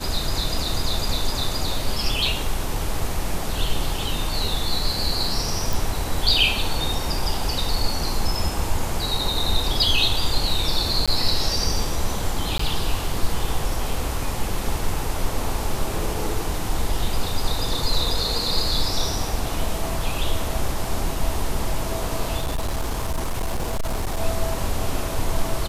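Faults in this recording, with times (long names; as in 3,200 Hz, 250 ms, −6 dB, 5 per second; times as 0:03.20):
0:05.73: click
0:11.06–0:11.08: drop-out 16 ms
0:12.58–0:12.59: drop-out 14 ms
0:22.39–0:24.20: clipping −20 dBFS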